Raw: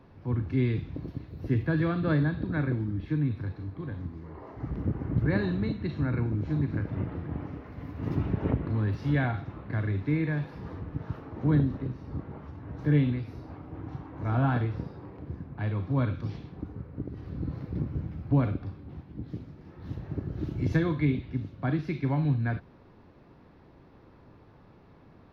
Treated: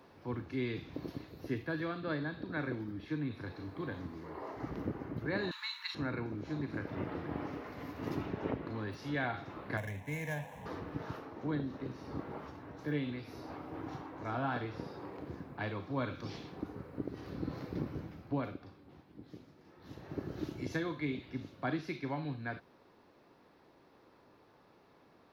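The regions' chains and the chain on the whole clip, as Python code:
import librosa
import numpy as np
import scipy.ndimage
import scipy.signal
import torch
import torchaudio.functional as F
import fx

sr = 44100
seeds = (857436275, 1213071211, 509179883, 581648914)

y = fx.chain(x, sr, fx.brickwall_highpass(low_hz=850.0),
    fx.high_shelf(hz=3200.0, db=11.0), at=(5.51, 5.95))
y = fx.chain(y, sr, fx.median_filter(points=15),
    fx.fixed_phaser(hz=1300.0, stages=6), at=(9.77, 10.66))
y = fx.low_shelf(y, sr, hz=100.0, db=-10.5)
y = fx.rider(y, sr, range_db=5, speed_s=0.5)
y = fx.bass_treble(y, sr, bass_db=-9, treble_db=8)
y = y * 10.0 ** (-1.5 / 20.0)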